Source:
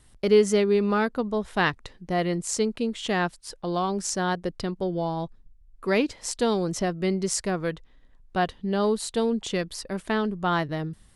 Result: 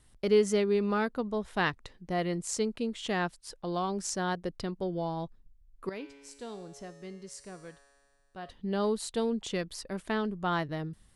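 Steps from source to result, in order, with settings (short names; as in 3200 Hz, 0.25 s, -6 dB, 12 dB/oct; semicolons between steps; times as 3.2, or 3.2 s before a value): 5.89–8.5 resonator 140 Hz, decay 1.9 s, mix 80%; gain -5.5 dB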